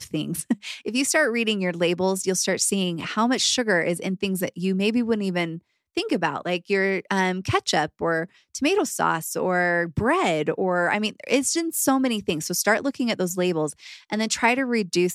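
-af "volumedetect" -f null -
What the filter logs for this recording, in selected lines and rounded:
mean_volume: -23.7 dB
max_volume: -6.8 dB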